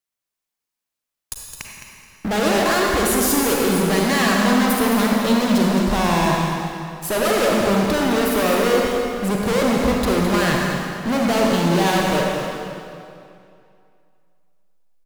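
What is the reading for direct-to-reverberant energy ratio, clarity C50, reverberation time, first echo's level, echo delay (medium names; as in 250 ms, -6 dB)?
-1.5 dB, -1.0 dB, 2.5 s, -9.0 dB, 213 ms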